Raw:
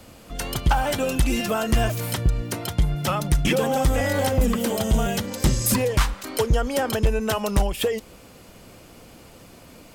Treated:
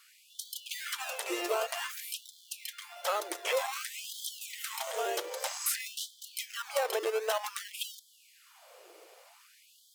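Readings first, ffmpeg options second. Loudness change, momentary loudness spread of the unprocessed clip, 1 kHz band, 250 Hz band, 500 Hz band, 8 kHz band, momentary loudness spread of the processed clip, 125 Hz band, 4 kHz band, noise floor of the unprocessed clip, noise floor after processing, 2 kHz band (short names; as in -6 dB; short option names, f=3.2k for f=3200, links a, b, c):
-11.5 dB, 5 LU, -10.0 dB, -24.0 dB, -10.5 dB, -7.0 dB, 10 LU, under -40 dB, -7.0 dB, -47 dBFS, -62 dBFS, -8.5 dB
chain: -filter_complex "[0:a]asplit=2[a][b];[b]acrusher=samples=22:mix=1:aa=0.000001:lfo=1:lforange=13.2:lforate=0.9,volume=-4dB[c];[a][c]amix=inputs=2:normalize=0,afftfilt=real='re*gte(b*sr/1024,320*pow(3100/320,0.5+0.5*sin(2*PI*0.53*pts/sr)))':imag='im*gte(b*sr/1024,320*pow(3100/320,0.5+0.5*sin(2*PI*0.53*pts/sr)))':win_size=1024:overlap=0.75,volume=-8dB"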